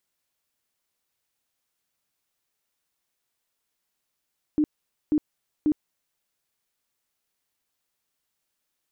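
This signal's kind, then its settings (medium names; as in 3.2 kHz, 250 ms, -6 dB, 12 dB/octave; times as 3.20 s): tone bursts 302 Hz, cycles 18, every 0.54 s, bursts 3, -17.5 dBFS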